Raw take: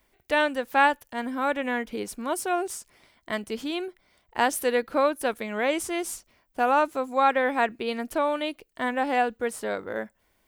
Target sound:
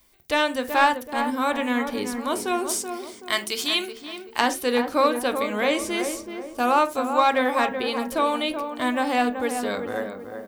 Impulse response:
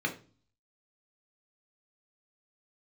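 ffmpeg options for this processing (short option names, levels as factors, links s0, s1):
-filter_complex "[0:a]acrossover=split=4200[s0][s1];[s1]acompressor=threshold=0.00631:ratio=4:attack=1:release=60[s2];[s0][s2]amix=inputs=2:normalize=0,highshelf=f=2900:g=11,asplit=2[s3][s4];[s4]aeval=exprs='0.2*(abs(mod(val(0)/0.2+3,4)-2)-1)':c=same,volume=0.251[s5];[s3][s5]amix=inputs=2:normalize=0,asettb=1/sr,asplit=3[s6][s7][s8];[s6]atrim=end=2.694[s9];[s7]atrim=start=2.69:end=4.41,asetpts=PTS-STARTPTS,afade=t=in:d=0.004:c=qsin,afade=t=out:st=1.716:d=0.004:c=qsin,tiltshelf=f=710:g=-8[s10];[s8]atrim=start=4.406[s11];[s9][s10]acrossfade=d=0.004:c1=hsin:c2=qsin[s12];[s12][s11]acrossfade=d=0.004:c1=qsin:c2=hsin,asplit=2[s13][s14];[s14]adelay=379,lowpass=f=1300:p=1,volume=0.473,asplit=2[s15][s16];[s16]adelay=379,lowpass=f=1300:p=1,volume=0.44,asplit=2[s17][s18];[s18]adelay=379,lowpass=f=1300:p=1,volume=0.44,asplit=2[s19][s20];[s20]adelay=379,lowpass=f=1300:p=1,volume=0.44,asplit=2[s21][s22];[s22]adelay=379,lowpass=f=1300:p=1,volume=0.44[s23];[s13][s15][s17][s19][s21][s23]amix=inputs=6:normalize=0,asplit=2[s24][s25];[1:a]atrim=start_sample=2205,atrim=end_sample=3528,asetrate=36162,aresample=44100[s26];[s25][s26]afir=irnorm=-1:irlink=0,volume=0.188[s27];[s24][s27]amix=inputs=2:normalize=0"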